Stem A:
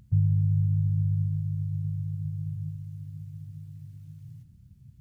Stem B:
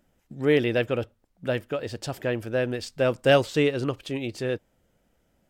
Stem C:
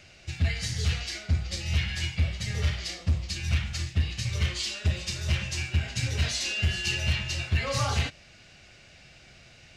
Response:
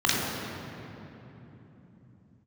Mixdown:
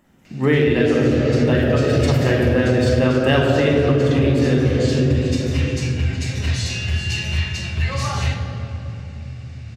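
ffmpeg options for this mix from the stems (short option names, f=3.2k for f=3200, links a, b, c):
-filter_complex "[0:a]adelay=2250,volume=-8.5dB[a];[1:a]volume=2.5dB,asplit=2[b][c];[c]volume=-6dB[d];[2:a]adelay=250,volume=0.5dB,asplit=2[e][f];[f]volume=-17.5dB[g];[3:a]atrim=start_sample=2205[h];[d][g]amix=inputs=2:normalize=0[i];[i][h]afir=irnorm=-1:irlink=0[j];[a][b][e][j]amix=inputs=4:normalize=0,acompressor=threshold=-12dB:ratio=12"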